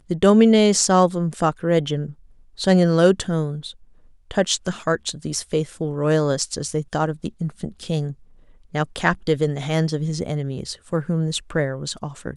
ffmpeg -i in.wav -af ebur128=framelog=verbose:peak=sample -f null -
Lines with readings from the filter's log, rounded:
Integrated loudness:
  I:         -21.2 LUFS
  Threshold: -31.7 LUFS
Loudness range:
  LRA:         6.1 LU
  Threshold: -42.6 LUFS
  LRA low:   -24.9 LUFS
  LRA high:  -18.9 LUFS
Sample peak:
  Peak:       -2.2 dBFS